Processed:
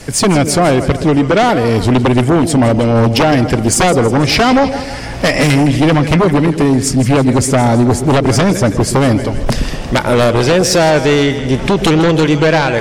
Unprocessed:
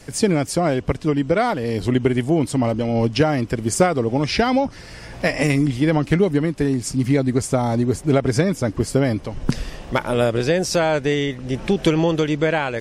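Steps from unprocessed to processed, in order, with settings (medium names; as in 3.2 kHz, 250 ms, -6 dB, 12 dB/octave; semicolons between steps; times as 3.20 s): two-band feedback delay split 610 Hz, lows 121 ms, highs 161 ms, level -13.5 dB; sine folder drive 9 dB, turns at -5 dBFS; trim -1 dB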